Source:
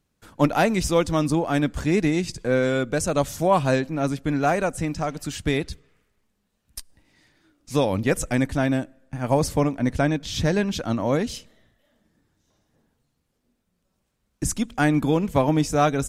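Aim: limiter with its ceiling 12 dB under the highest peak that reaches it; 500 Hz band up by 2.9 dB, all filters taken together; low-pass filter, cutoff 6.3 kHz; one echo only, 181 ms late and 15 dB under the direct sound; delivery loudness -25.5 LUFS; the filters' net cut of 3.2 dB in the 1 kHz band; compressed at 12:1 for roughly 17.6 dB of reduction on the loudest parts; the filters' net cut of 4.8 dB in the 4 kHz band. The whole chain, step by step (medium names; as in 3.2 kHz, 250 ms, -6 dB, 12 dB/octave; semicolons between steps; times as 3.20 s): low-pass 6.3 kHz; peaking EQ 500 Hz +5.5 dB; peaking EQ 1 kHz -7.5 dB; peaking EQ 4 kHz -5 dB; compression 12:1, threshold -31 dBFS; peak limiter -32.5 dBFS; delay 181 ms -15 dB; trim +16.5 dB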